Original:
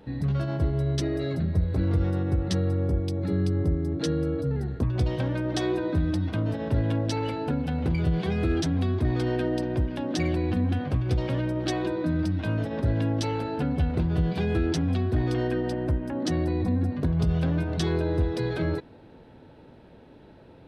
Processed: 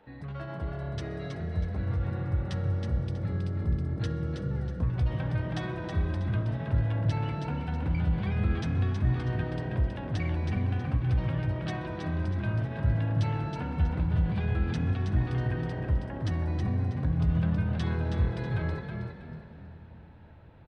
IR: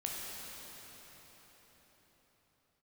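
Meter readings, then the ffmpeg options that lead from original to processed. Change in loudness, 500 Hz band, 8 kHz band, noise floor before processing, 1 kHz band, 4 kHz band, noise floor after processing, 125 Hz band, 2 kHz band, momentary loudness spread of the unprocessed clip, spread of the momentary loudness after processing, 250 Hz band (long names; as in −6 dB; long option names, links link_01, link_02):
−3.5 dB, −9.5 dB, below −10 dB, −51 dBFS, −3.5 dB, −8.5 dB, −47 dBFS, −1.5 dB, −2.5 dB, 3 LU, 8 LU, −7.0 dB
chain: -filter_complex "[0:a]asubboost=boost=5.5:cutoff=160,aresample=22050,aresample=44100,acrossover=split=570 2900:gain=0.251 1 0.2[link_01][link_02][link_03];[link_01][link_02][link_03]amix=inputs=3:normalize=0,asplit=5[link_04][link_05][link_06][link_07][link_08];[link_05]adelay=321,afreqshift=37,volume=-5.5dB[link_09];[link_06]adelay=642,afreqshift=74,volume=-15.1dB[link_10];[link_07]adelay=963,afreqshift=111,volume=-24.8dB[link_11];[link_08]adelay=1284,afreqshift=148,volume=-34.4dB[link_12];[link_04][link_09][link_10][link_11][link_12]amix=inputs=5:normalize=0,asplit=2[link_13][link_14];[1:a]atrim=start_sample=2205[link_15];[link_14][link_15]afir=irnorm=-1:irlink=0,volume=-13.5dB[link_16];[link_13][link_16]amix=inputs=2:normalize=0,volume=-3.5dB"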